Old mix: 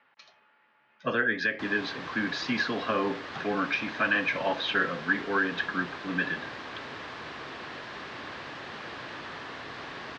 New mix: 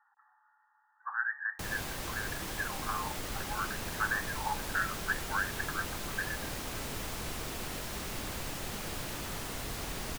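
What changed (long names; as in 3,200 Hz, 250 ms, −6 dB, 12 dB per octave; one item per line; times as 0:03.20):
speech: add linear-phase brick-wall band-pass 750–1,900 Hz
master: remove loudspeaker in its box 170–4,200 Hz, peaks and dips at 190 Hz −7 dB, 1,100 Hz +5 dB, 1,700 Hz +7 dB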